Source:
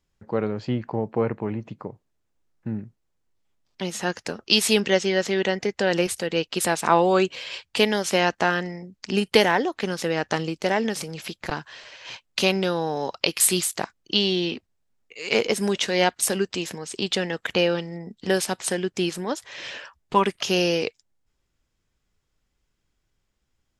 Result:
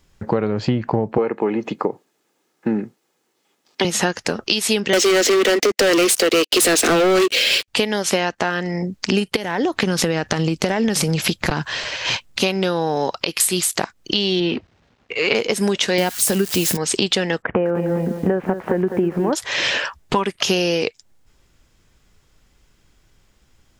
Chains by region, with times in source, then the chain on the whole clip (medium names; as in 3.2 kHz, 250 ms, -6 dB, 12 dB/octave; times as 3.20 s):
1.18–3.85 s: high-pass 200 Hz 24 dB/octave + comb 2.4 ms, depth 32%
4.93–7.68 s: steep high-pass 210 Hz 72 dB/octave + static phaser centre 390 Hz, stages 4 + waveshaping leveller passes 5
9.36–12.43 s: compression 4:1, threshold -27 dBFS + tone controls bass +6 dB, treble +1 dB
14.40–15.35 s: companding laws mixed up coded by mu + high-pass 53 Hz + distance through air 200 m
15.98–16.77 s: zero-crossing glitches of -22 dBFS + bass shelf 240 Hz +10 dB
17.42–19.33 s: Gaussian low-pass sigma 5.7 samples + compression 1.5:1, threshold -29 dBFS + bit-crushed delay 203 ms, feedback 35%, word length 9-bit, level -10 dB
whole clip: compression 12:1, threshold -32 dBFS; loudness maximiser +19.5 dB; trim -2.5 dB